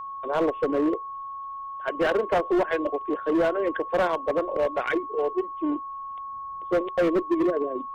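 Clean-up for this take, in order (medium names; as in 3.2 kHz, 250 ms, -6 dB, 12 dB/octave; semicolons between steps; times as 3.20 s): clip repair -18 dBFS; band-stop 1.1 kHz, Q 30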